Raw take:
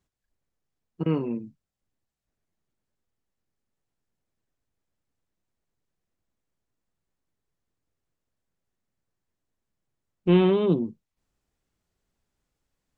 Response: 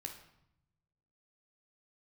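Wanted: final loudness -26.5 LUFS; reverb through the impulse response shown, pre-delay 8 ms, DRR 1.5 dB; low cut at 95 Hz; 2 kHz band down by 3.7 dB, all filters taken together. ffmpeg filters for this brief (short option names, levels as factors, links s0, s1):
-filter_complex "[0:a]highpass=95,equalizer=f=2000:t=o:g=-5,asplit=2[s0][s1];[1:a]atrim=start_sample=2205,adelay=8[s2];[s1][s2]afir=irnorm=-1:irlink=0,volume=1.19[s3];[s0][s3]amix=inputs=2:normalize=0,volume=0.668"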